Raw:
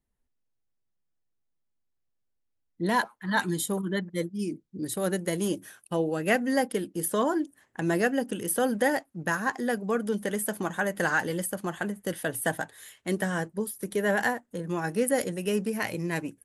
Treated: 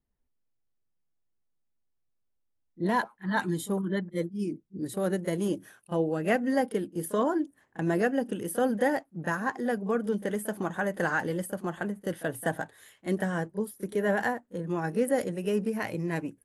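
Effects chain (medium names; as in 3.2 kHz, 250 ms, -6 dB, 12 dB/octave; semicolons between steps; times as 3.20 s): treble shelf 2.1 kHz -9 dB; pre-echo 31 ms -17.5 dB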